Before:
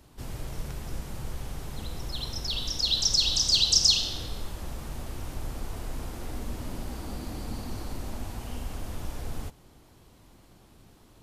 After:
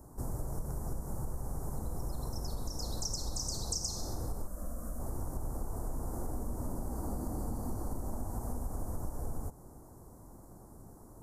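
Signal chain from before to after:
Chebyshev band-stop filter 960–8,300 Hz, order 2
downward compressor, threshold −36 dBFS, peak gain reduction 10 dB
0:04.47–0:05.00: phaser with its sweep stopped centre 580 Hz, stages 8
level +4 dB

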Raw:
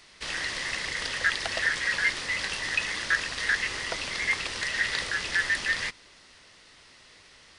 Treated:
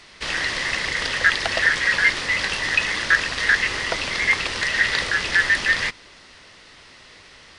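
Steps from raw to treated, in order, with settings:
high-shelf EQ 7,200 Hz −9.5 dB
level +8.5 dB

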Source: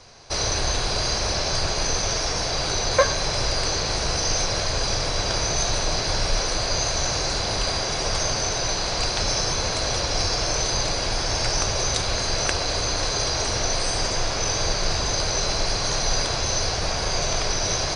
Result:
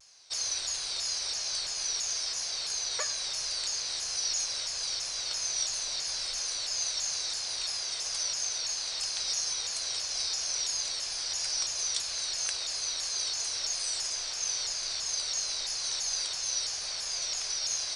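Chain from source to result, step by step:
first-order pre-emphasis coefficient 0.97
pitch modulation by a square or saw wave saw down 3 Hz, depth 160 cents
level −2.5 dB

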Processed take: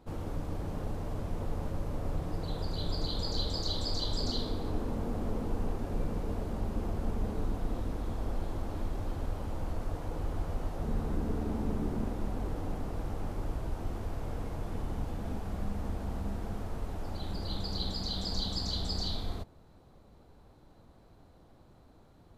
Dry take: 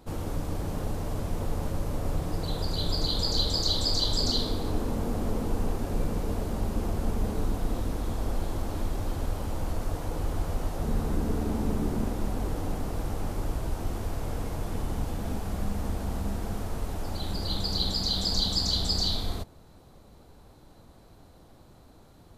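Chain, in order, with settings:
high-shelf EQ 4,500 Hz −9.5 dB
level −4.5 dB

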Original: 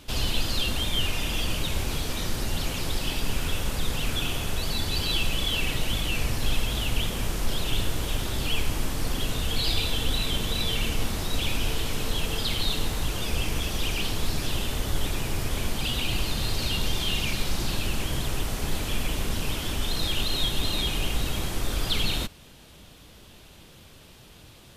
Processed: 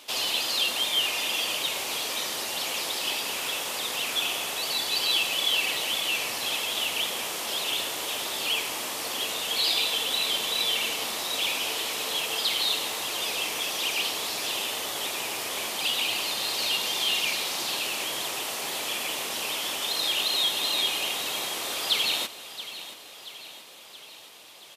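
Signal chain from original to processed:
high-pass filter 600 Hz 12 dB per octave
parametric band 1,500 Hz −5.5 dB 0.38 octaves
on a send: repeating echo 677 ms, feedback 57%, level −14 dB
on the sum: level +4 dB

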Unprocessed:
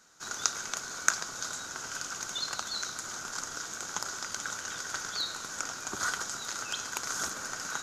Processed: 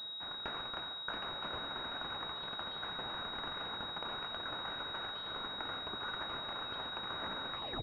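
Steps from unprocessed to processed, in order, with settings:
turntable brake at the end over 0.33 s
reversed playback
downward compressor 6 to 1, threshold −43 dBFS, peak gain reduction 23 dB
reversed playback
slap from a distant wall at 15 metres, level −9 dB
switching amplifier with a slow clock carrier 3,800 Hz
level +4.5 dB

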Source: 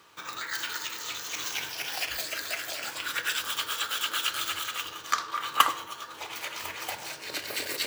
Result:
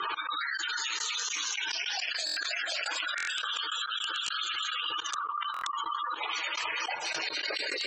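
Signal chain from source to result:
gate on every frequency bin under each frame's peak −10 dB strong
high-pass filter 120 Hz
high-shelf EQ 3,300 Hz −4 dB
delay with a low-pass on its return 345 ms, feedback 44%, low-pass 670 Hz, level −8.5 dB
wrap-around overflow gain 21 dB
elliptic low-pass filter 7,500 Hz, stop band 50 dB
spectral tilt +3 dB per octave
gate pattern "x.xx...xx..x." 105 BPM −24 dB
buffer that repeats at 0:02.25/0:03.16/0:05.52, samples 1,024, times 4
envelope flattener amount 100%
level −8 dB

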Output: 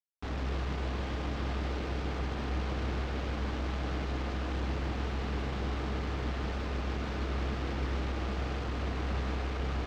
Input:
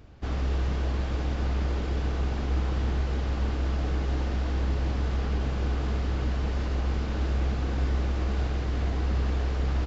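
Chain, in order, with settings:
high-pass filter 88 Hz 6 dB per octave
bit reduction 6 bits
high-frequency loss of the air 180 metres
on a send: feedback echo with a high-pass in the loop 152 ms, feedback 77%, high-pass 210 Hz, level −9 dB
on the sum: level −3 dB

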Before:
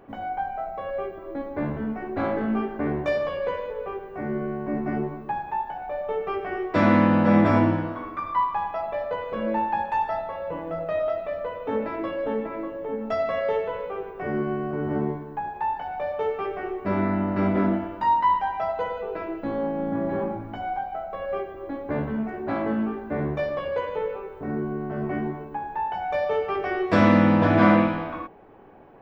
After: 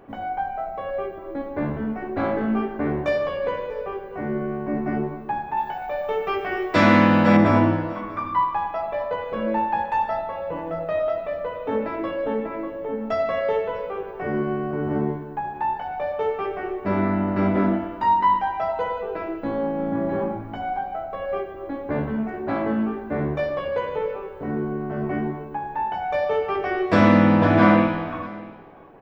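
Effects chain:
0:05.57–0:07.37: high-shelf EQ 2,200 Hz +11.5 dB
on a send: single-tap delay 641 ms −21 dB
on the sum: level +2 dB

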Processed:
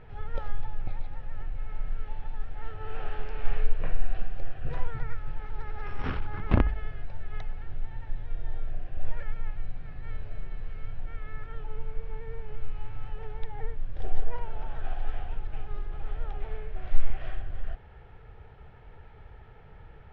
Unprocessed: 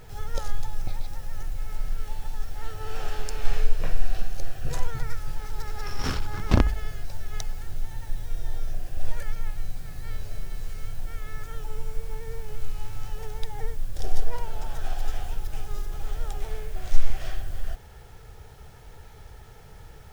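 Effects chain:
low-pass filter 2,800 Hz 24 dB per octave
level −3 dB

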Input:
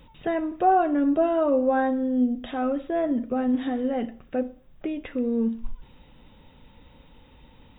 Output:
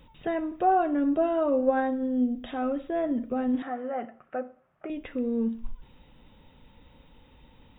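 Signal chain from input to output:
0:01.59–0:02.10: transient designer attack +6 dB, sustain −6 dB
0:03.62–0:04.90: loudspeaker in its box 190–2,300 Hz, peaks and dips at 200 Hz −7 dB, 280 Hz −10 dB, 460 Hz −5 dB, 680 Hz +7 dB, 1,300 Hz +10 dB
level −3 dB

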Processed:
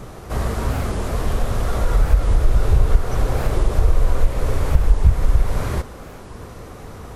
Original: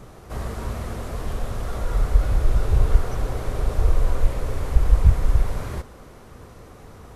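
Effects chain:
downward compressor 2 to 1, threshold −20 dBFS, peak gain reduction 7.5 dB
wow of a warped record 45 rpm, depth 250 cents
level +7.5 dB

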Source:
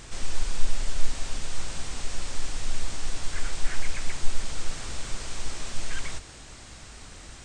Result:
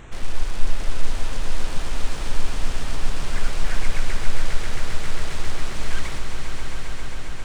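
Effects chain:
adaptive Wiener filter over 9 samples
echo that builds up and dies away 134 ms, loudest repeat 5, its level −8.5 dB
level +4 dB

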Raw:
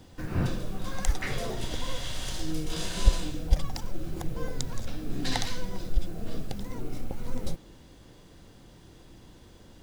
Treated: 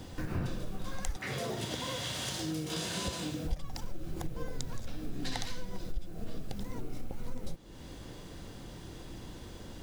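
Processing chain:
0:01.16–0:03.45: high-pass filter 92 Hz 24 dB per octave
downward compressor 3 to 1, threshold −41 dBFS, peak gain reduction 20 dB
level +6 dB

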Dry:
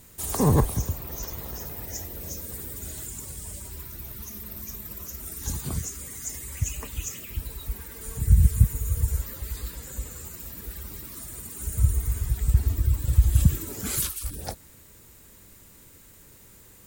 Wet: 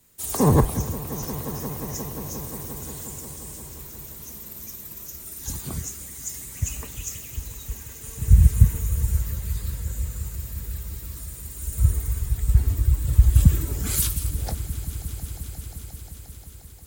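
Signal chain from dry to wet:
echo that builds up and dies away 177 ms, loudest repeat 5, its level −15 dB
multiband upward and downward expander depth 40%

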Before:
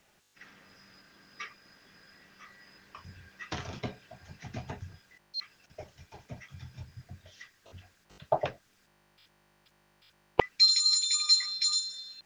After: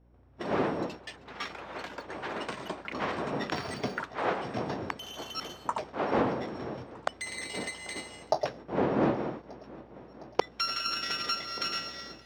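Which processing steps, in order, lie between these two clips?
samples sorted by size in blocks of 8 samples
wind on the microphone 480 Hz −38 dBFS
high-pass filter 190 Hz 12 dB per octave
noise gate −47 dBFS, range −25 dB
downward compressor 4 to 1, threshold −30 dBFS, peak gain reduction 12.5 dB
mains hum 60 Hz, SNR 29 dB
on a send: feedback echo with a long and a short gap by turns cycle 1,183 ms, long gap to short 1.5 to 1, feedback 66%, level −21.5 dB
on the sum: delay with pitch and tempo change per echo 136 ms, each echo +7 semitones, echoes 3
high-frequency loss of the air 150 metres
level +7 dB

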